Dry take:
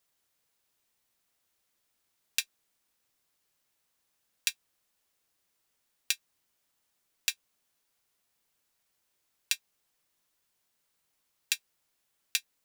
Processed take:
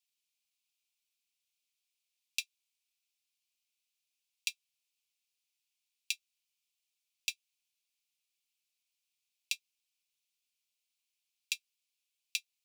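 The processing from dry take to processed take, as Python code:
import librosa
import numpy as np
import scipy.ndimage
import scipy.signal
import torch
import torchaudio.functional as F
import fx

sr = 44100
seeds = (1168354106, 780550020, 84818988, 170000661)

y = scipy.signal.sosfilt(scipy.signal.ellip(4, 1.0, 40, 2400.0, 'highpass', fs=sr, output='sos'), x)
y = fx.tilt_eq(y, sr, slope=-3.0)
y = y * 10.0 ** (1.5 / 20.0)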